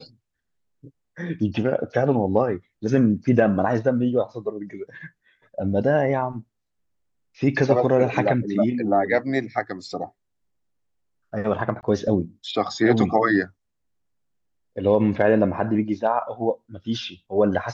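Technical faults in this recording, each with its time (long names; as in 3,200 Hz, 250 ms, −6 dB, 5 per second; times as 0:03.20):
0:11.81–0:11.83: drop-out 19 ms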